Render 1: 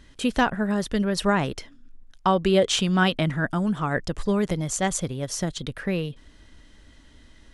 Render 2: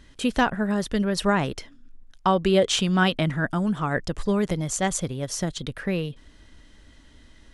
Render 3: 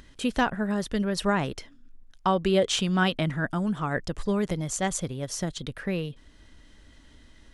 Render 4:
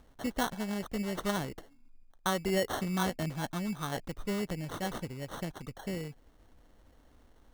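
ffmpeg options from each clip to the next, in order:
-af anull
-af "acompressor=mode=upward:threshold=-44dB:ratio=2.5,volume=-3dB"
-af "acrusher=samples=18:mix=1:aa=0.000001,volume=-7.5dB"

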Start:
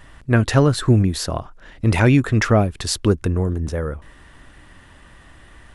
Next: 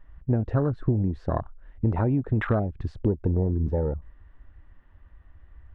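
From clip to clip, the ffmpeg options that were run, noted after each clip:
-af "acompressor=threshold=-19dB:ratio=12,lowpass=1.8k,afwtdn=0.0398"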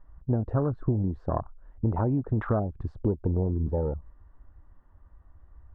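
-af "highshelf=f=1.6k:t=q:w=1.5:g=-10.5,volume=-2.5dB"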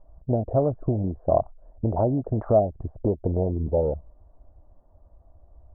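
-af "lowpass=f=650:t=q:w=4.9"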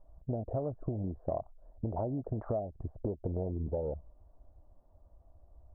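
-af "acompressor=threshold=-25dB:ratio=5,volume=-6dB"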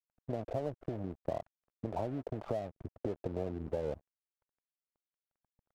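-filter_complex "[0:a]lowshelf=f=350:g=-4.5,acrossover=split=88|310[a][b][c];[a]acompressor=threshold=-58dB:ratio=4[d];[b]acompressor=threshold=-43dB:ratio=4[e];[c]acompressor=threshold=-37dB:ratio=4[f];[d][e][f]amix=inputs=3:normalize=0,aeval=exprs='sgn(val(0))*max(abs(val(0))-0.002,0)':c=same,volume=4.5dB"

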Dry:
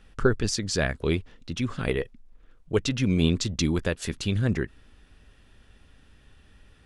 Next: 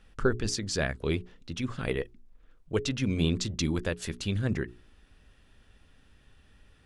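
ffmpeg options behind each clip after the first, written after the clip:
-af "bandreject=f=60:t=h:w=6,bandreject=f=120:t=h:w=6,bandreject=f=180:t=h:w=6,bandreject=f=240:t=h:w=6,bandreject=f=300:t=h:w=6,bandreject=f=360:t=h:w=6,bandreject=f=420:t=h:w=6,volume=-3.5dB"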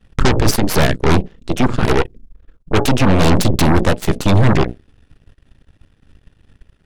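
-af "lowshelf=f=470:g=10,aeval=exprs='0.531*sin(PI/2*2.24*val(0)/0.531)':c=same,aeval=exprs='0.562*(cos(1*acos(clip(val(0)/0.562,-1,1)))-cos(1*PI/2))+0.282*(cos(6*acos(clip(val(0)/0.562,-1,1)))-cos(6*PI/2))+0.0631*(cos(7*acos(clip(val(0)/0.562,-1,1)))-cos(7*PI/2))':c=same,volume=-3.5dB"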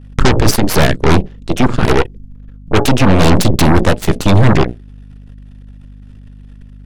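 -af "aeval=exprs='val(0)+0.0141*(sin(2*PI*50*n/s)+sin(2*PI*2*50*n/s)/2+sin(2*PI*3*50*n/s)/3+sin(2*PI*4*50*n/s)/4+sin(2*PI*5*50*n/s)/5)':c=same,volume=3dB"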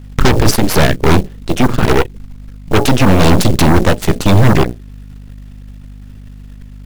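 -filter_complex "[0:a]asplit=2[a][b];[b]alimiter=limit=-9.5dB:level=0:latency=1:release=205,volume=-2.5dB[c];[a][c]amix=inputs=2:normalize=0,acrusher=bits=6:mode=log:mix=0:aa=0.000001,volume=-2dB"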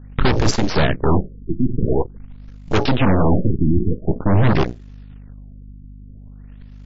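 -af "afftfilt=real='re*lt(b*sr/1024,370*pow(7600/370,0.5+0.5*sin(2*PI*0.47*pts/sr)))':imag='im*lt(b*sr/1024,370*pow(7600/370,0.5+0.5*sin(2*PI*0.47*pts/sr)))':win_size=1024:overlap=0.75,volume=-6dB"

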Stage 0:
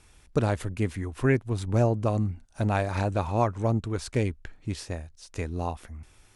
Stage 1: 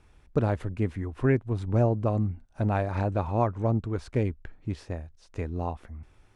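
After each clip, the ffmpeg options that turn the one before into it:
-af "lowpass=f=1.4k:p=1"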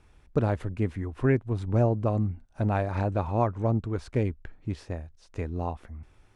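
-af anull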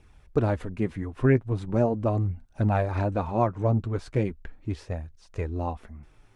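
-af "flanger=delay=0.3:depth=7.8:regen=-32:speed=0.39:shape=triangular,volume=5dB"

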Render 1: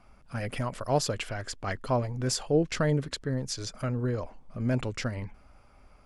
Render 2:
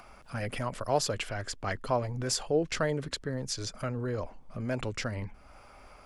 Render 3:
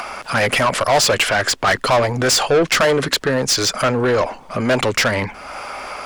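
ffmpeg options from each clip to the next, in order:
-filter_complex "[0:a]acrossover=split=370[a][b];[a]alimiter=level_in=5.5dB:limit=-24dB:level=0:latency=1,volume=-5.5dB[c];[b]acompressor=mode=upward:threshold=-45dB:ratio=2.5[d];[c][d]amix=inputs=2:normalize=0"
-filter_complex "[0:a]asplit=2[a][b];[b]highpass=f=720:p=1,volume=26dB,asoftclip=type=tanh:threshold=-13.5dB[c];[a][c]amix=inputs=2:normalize=0,lowpass=f=7.3k:p=1,volume=-6dB,volume=7dB"

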